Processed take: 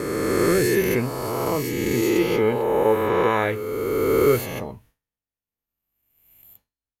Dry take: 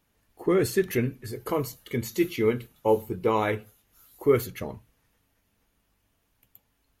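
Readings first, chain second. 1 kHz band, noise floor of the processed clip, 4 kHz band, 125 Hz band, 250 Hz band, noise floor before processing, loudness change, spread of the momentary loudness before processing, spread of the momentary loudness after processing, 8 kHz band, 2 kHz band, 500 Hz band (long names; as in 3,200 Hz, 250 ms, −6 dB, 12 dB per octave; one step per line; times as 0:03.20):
+6.5 dB, below −85 dBFS, +7.5 dB, +4.5 dB, +5.5 dB, −72 dBFS, +5.5 dB, 10 LU, 7 LU, +8.0 dB, +8.0 dB, +6.0 dB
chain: peak hold with a rise ahead of every peak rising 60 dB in 2.81 s
downward expander −48 dBFS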